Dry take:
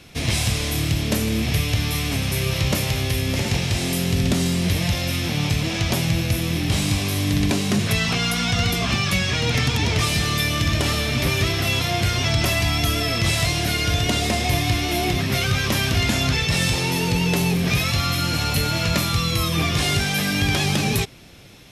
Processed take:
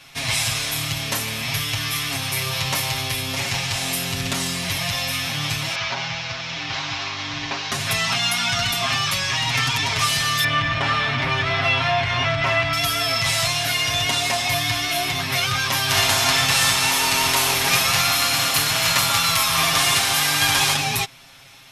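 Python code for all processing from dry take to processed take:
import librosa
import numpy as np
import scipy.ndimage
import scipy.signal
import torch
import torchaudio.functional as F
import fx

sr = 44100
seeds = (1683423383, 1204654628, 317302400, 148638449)

y = fx.chain(x, sr, fx.cvsd(bps=32000),
    fx.low_shelf(hz=300.0, db=-8.5), at=(5.75, 7.72))
y = fx.chain(y, sr, fx.lowpass(hz=2500.0, slope=12),
    fx.env_flatten(amount_pct=70), at=(10.44, 12.73))
y = fx.spec_flatten(y, sr, power=0.68, at=(15.88, 20.73), fade=0.02)
y = fx.echo_alternate(y, sr, ms=140, hz=1400.0, feedback_pct=58, wet_db=-2.5, at=(15.88, 20.73), fade=0.02)
y = fx.low_shelf_res(y, sr, hz=620.0, db=-10.5, q=1.5)
y = y + 0.91 * np.pad(y, (int(7.4 * sr / 1000.0), 0))[:len(y)]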